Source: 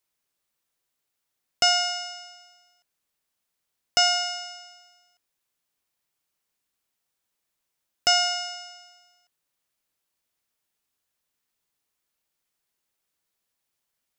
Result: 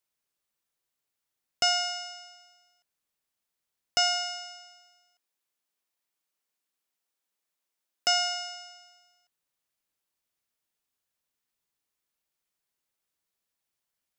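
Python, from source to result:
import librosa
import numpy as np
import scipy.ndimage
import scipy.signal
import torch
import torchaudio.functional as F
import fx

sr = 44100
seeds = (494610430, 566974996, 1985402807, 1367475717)

y = fx.highpass(x, sr, hz=210.0, slope=12, at=(4.64, 8.42))
y = F.gain(torch.from_numpy(y), -4.5).numpy()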